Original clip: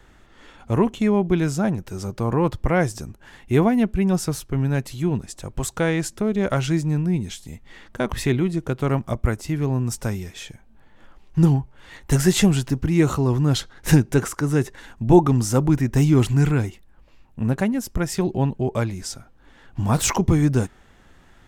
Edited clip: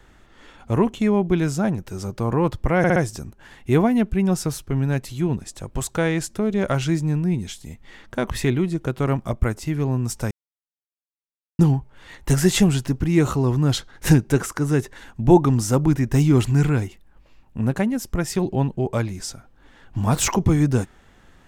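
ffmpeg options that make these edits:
-filter_complex "[0:a]asplit=6[a][b][c][d][e][f];[a]atrim=end=2.842[g];[b]atrim=start=2.778:end=2.842[h];[c]atrim=start=2.778:end=2.842[i];[d]atrim=start=2.778:end=10.13,asetpts=PTS-STARTPTS,afade=t=out:st=7.348:d=0.004:c=hsin[j];[e]atrim=start=10.13:end=11.41,asetpts=PTS-STARTPTS,volume=0[k];[f]atrim=start=11.41,asetpts=PTS-STARTPTS,afade=t=in:d=0.004:c=hsin[l];[g][h]acrossfade=d=0.004:c1=hsin:c2=hsin[m];[m][i]acrossfade=d=0.004:c1=hsin:c2=hsin[n];[j][k][l]concat=n=3:v=0:a=1[o];[n][o]acrossfade=d=0.004:c1=hsin:c2=hsin"

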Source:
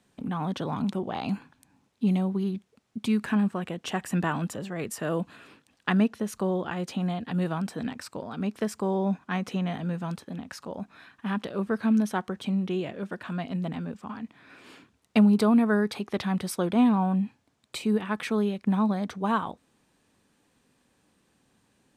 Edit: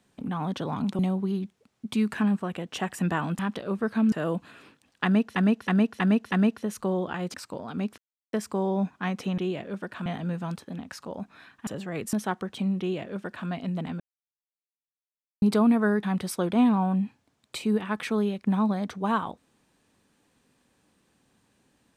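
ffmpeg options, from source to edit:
-filter_complex "[0:a]asplit=17[a][b][c][d][e][f][g][h][i][j][k][l][m][n][o][p][q];[a]atrim=end=0.992[r];[b]atrim=start=2.108:end=4.512[s];[c]atrim=start=11.268:end=12.002[t];[d]atrim=start=4.968:end=6.212[u];[e]atrim=start=5.888:end=6.212[v];[f]atrim=start=5.888:end=6.212[w];[g]atrim=start=5.888:end=6.212[x];[h]atrim=start=5.888:end=6.912[y];[i]atrim=start=7.968:end=8.61,asetpts=PTS-STARTPTS,afade=t=out:st=0.638:d=0.004:c=hsin,apad=pad_dur=0.35[z];[j]atrim=start=8.61:end=9.662,asetpts=PTS-STARTPTS,afade=t=in:d=0.004:c=hsin[aa];[k]atrim=start=12.668:end=13.352[ab];[l]atrim=start=9.658:end=11.272[ac];[m]atrim=start=4.508:end=4.972[ad];[n]atrim=start=11.998:end=13.87,asetpts=PTS-STARTPTS,afade=t=out:st=1.868:d=0.004:c=hsin[ae];[o]atrim=start=13.87:end=15.29,asetpts=PTS-STARTPTS,volume=0[af];[p]atrim=start=15.29:end=15.902,asetpts=PTS-STARTPTS,afade=t=in:d=0.004:c=hsin[ag];[q]atrim=start=16.228[ah];[r][s]acrossfade=d=0.004:c1=hsin:c2=hsin[ai];[ai][t]acrossfade=d=0.004:c1=hsin:c2=hsin[aj];[aj][u]acrossfade=d=0.004:c1=hsin:c2=hsin[ak];[ak][v]acrossfade=d=0.004:c1=hsin:c2=hsin[al];[al][w]acrossfade=d=0.004:c1=hsin:c2=hsin[am];[am][x]acrossfade=d=0.004:c1=hsin:c2=hsin[an];[an][y]acrossfade=d=0.004:c1=hsin:c2=hsin[ao];[z][aa]concat=n=2:v=0:a=1[ap];[ao][ap]acrossfade=d=0.004:c1=hsin:c2=hsin[aq];[aq][ab]acrossfade=d=0.004:c1=hsin:c2=hsin[ar];[ar][ac]acrossfade=d=0.004:c1=hsin:c2=hsin[as];[as][ad]acrossfade=d=0.004:c1=hsin:c2=hsin[at];[ae][af][ag]concat=n=3:v=0:a=1[au];[at][au]acrossfade=d=0.004:c1=hsin:c2=hsin[av];[av][ah]acrossfade=d=0.004:c1=hsin:c2=hsin"

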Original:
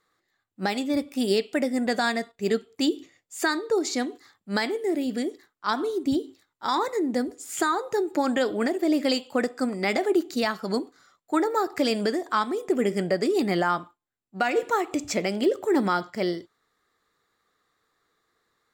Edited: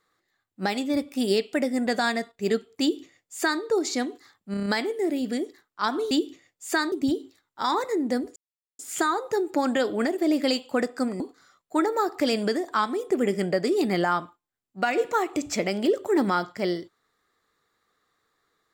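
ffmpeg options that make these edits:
-filter_complex "[0:a]asplit=10[a][b][c][d][e][f][g][h][i][j];[a]atrim=end=4.542[k];[b]atrim=start=4.508:end=4.542[l];[c]atrim=start=4.508:end=4.542[m];[d]atrim=start=4.508:end=4.542[n];[e]atrim=start=4.508:end=4.542[o];[f]atrim=start=4.508:end=5.962[p];[g]atrim=start=2.808:end=3.622[q];[h]atrim=start=5.958:end=7.4,asetpts=PTS-STARTPTS,afade=t=out:st=1.438:d=0.004:c=hsin,apad=pad_dur=0.43[r];[i]atrim=start=7.4:end=9.812,asetpts=PTS-STARTPTS,afade=t=in:d=0.004:c=hsin[s];[j]atrim=start=10.778[t];[k][l]acrossfade=d=0.004:c1=hsin:c2=hsin[u];[u][m]acrossfade=d=0.004:c1=hsin:c2=hsin[v];[v][n]acrossfade=d=0.004:c1=hsin:c2=hsin[w];[w][o]acrossfade=d=0.004:c1=hsin:c2=hsin[x];[x][p]acrossfade=d=0.004:c1=hsin:c2=hsin[y];[y][q]acrossfade=d=0.004:c1=hsin:c2=hsin[z];[r][s]concat=n=2:v=0:a=1[aa];[z][aa]acrossfade=d=0.004:c1=hsin:c2=hsin[ab];[ab][t]acrossfade=d=0.004:c1=hsin:c2=hsin"

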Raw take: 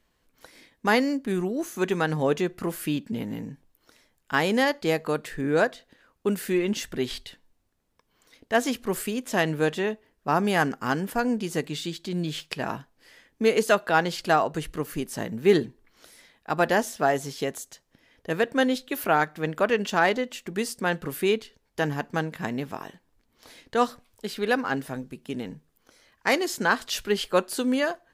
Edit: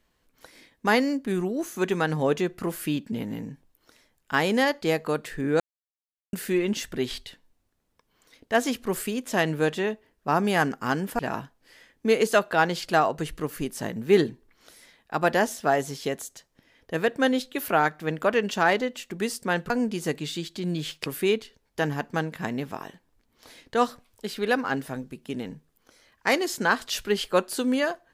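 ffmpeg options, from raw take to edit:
-filter_complex "[0:a]asplit=6[a][b][c][d][e][f];[a]atrim=end=5.6,asetpts=PTS-STARTPTS,afade=t=out:st=5.596:d=0.004:c=hsin[g];[b]atrim=start=5.6:end=6.33,asetpts=PTS-STARTPTS,volume=0[h];[c]atrim=start=6.33:end=11.192,asetpts=PTS-STARTPTS,afade=t=in:d=0.004:c=hsin[i];[d]atrim=start=12.548:end=21.062[j];[e]atrim=start=11.188:end=12.552[k];[f]atrim=start=21.058[l];[g][h][i]concat=n=3:v=0:a=1[m];[m][j]acrossfade=d=0.004:c1=hsin:c2=hsin[n];[n][k]acrossfade=d=0.004:c1=hsin:c2=hsin[o];[o][l]acrossfade=d=0.004:c1=hsin:c2=hsin"

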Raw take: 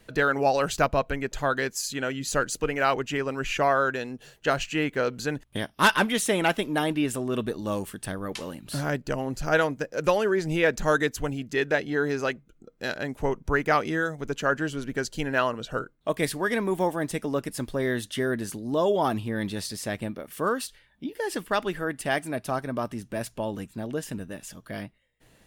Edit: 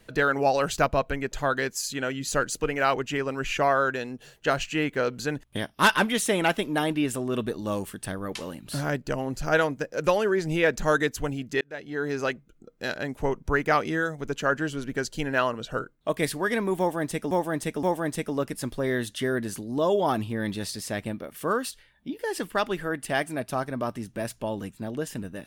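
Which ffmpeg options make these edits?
-filter_complex "[0:a]asplit=4[a][b][c][d];[a]atrim=end=11.61,asetpts=PTS-STARTPTS,afade=t=out:st=11.606:d=0.004:c=hsin[e];[b]atrim=start=11.61:end=17.312,asetpts=PTS-STARTPTS,afade=t=in:d=0.62[f];[c]atrim=start=16.788:end=17.312[g];[d]atrim=start=16.788[h];[e][f]concat=n=2:v=0:a=1[i];[i][g]acrossfade=d=0.004:c1=hsin:c2=hsin[j];[j][h]acrossfade=d=0.004:c1=hsin:c2=hsin"

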